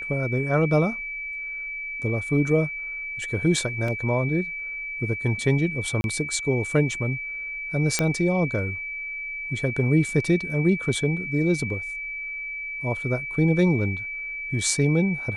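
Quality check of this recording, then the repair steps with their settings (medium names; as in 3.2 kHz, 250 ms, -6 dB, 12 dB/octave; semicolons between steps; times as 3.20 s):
whine 2.3 kHz -30 dBFS
3.88 s: dropout 3 ms
6.01–6.04 s: dropout 31 ms
7.99 s: pop -7 dBFS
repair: de-click; band-stop 2.3 kHz, Q 30; interpolate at 3.88 s, 3 ms; interpolate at 6.01 s, 31 ms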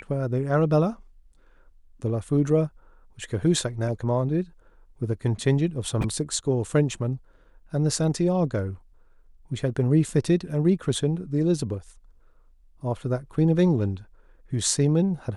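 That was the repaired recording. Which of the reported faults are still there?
nothing left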